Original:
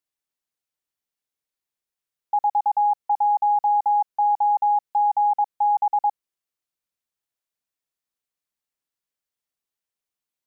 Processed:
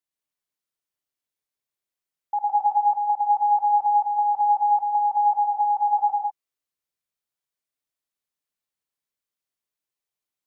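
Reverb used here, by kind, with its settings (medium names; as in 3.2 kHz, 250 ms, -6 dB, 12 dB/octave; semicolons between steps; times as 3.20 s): gated-style reverb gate 220 ms rising, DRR 0 dB; trim -4 dB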